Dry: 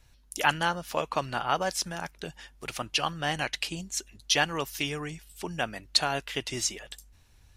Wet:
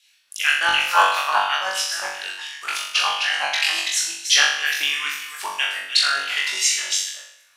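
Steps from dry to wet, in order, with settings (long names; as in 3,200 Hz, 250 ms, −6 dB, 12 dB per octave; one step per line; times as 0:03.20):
delay that plays each chunk backwards 206 ms, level −5 dB
auto-filter high-pass saw down 2.9 Hz 880–3,300 Hz
rotating-speaker cabinet horn 0.7 Hz
on a send: flutter between parallel walls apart 3.6 metres, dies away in 0.69 s
on the sum: level +7 dB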